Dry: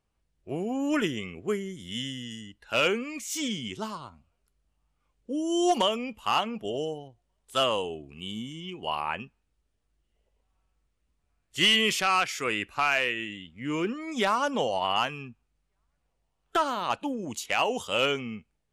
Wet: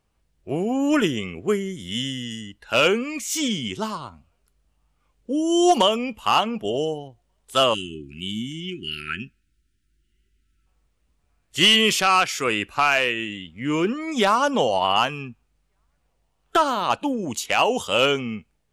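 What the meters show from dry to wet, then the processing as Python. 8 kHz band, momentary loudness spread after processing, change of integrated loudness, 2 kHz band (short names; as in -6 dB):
+7.0 dB, 14 LU, +6.5 dB, +5.0 dB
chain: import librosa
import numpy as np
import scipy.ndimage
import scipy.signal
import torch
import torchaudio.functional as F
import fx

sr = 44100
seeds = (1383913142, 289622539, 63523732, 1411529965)

y = fx.spec_erase(x, sr, start_s=7.74, length_s=2.92, low_hz=400.0, high_hz=1300.0)
y = fx.dynamic_eq(y, sr, hz=2000.0, q=2.5, threshold_db=-41.0, ratio=4.0, max_db=-4)
y = y * 10.0 ** (7.0 / 20.0)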